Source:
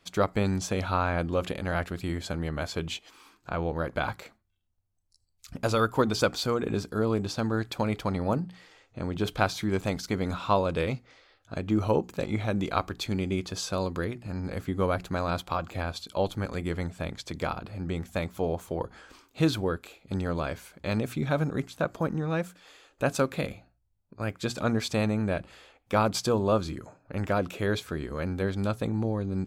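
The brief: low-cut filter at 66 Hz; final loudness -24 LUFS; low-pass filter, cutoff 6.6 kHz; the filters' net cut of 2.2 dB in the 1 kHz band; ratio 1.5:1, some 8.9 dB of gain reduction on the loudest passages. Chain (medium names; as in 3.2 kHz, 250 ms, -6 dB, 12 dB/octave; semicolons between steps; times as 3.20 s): high-pass 66 Hz; low-pass 6.6 kHz; peaking EQ 1 kHz -3 dB; compression 1.5:1, threshold -45 dBFS; trim +14 dB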